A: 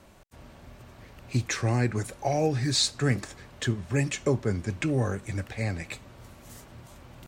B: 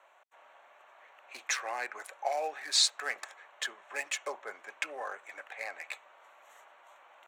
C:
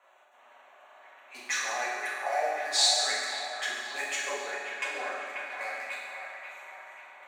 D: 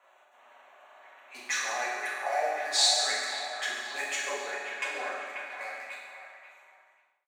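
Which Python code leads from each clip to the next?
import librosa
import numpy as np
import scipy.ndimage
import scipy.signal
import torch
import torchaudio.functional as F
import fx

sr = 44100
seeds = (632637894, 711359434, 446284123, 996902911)

y1 = fx.wiener(x, sr, points=9)
y1 = scipy.signal.sosfilt(scipy.signal.butter(4, 690.0, 'highpass', fs=sr, output='sos'), y1)
y2 = fx.echo_wet_bandpass(y1, sr, ms=537, feedback_pct=49, hz=1300.0, wet_db=-4.0)
y2 = fx.rev_fdn(y2, sr, rt60_s=1.6, lf_ratio=1.3, hf_ratio=0.95, size_ms=24.0, drr_db=-7.0)
y2 = y2 * librosa.db_to_amplitude(-4.5)
y3 = fx.fade_out_tail(y2, sr, length_s=2.2)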